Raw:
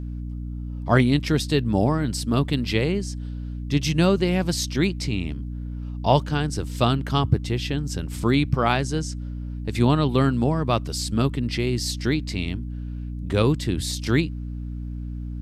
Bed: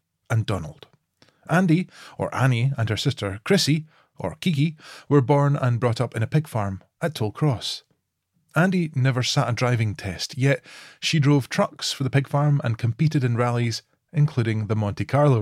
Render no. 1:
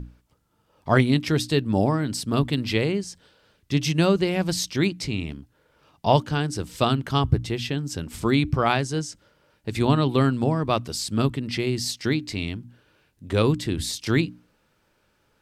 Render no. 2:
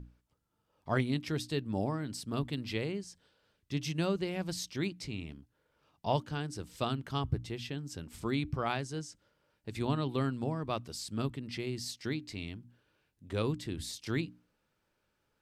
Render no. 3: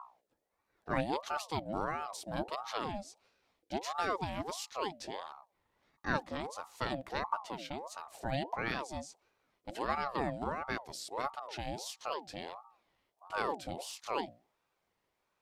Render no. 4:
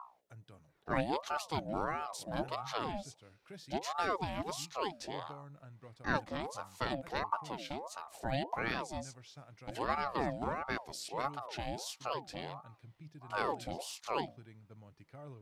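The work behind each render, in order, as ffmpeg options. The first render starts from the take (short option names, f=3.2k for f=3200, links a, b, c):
-af "bandreject=f=60:t=h:w=6,bandreject=f=120:t=h:w=6,bandreject=f=180:t=h:w=6,bandreject=f=240:t=h:w=6,bandreject=f=300:t=h:w=6"
-af "volume=-12dB"
-af "aeval=exprs='val(0)*sin(2*PI*720*n/s+720*0.45/1.5*sin(2*PI*1.5*n/s))':c=same"
-filter_complex "[1:a]volume=-32.5dB[a];[0:a][a]amix=inputs=2:normalize=0"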